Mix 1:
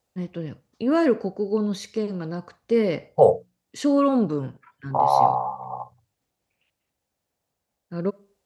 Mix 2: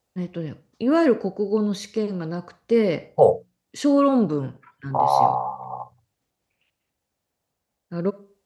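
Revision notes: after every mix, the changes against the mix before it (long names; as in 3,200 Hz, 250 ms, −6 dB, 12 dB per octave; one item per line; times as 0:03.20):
first voice: send +8.0 dB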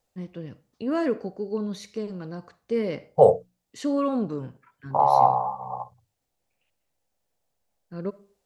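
first voice −7.0 dB
master: remove high-pass filter 48 Hz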